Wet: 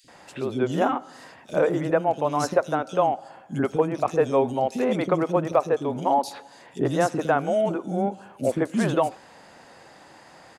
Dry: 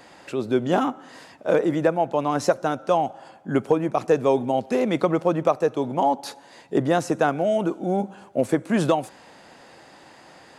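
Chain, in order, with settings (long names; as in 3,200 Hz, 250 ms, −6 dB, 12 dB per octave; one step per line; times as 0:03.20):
three-band delay without the direct sound highs, lows, mids 40/80 ms, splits 310/3,200 Hz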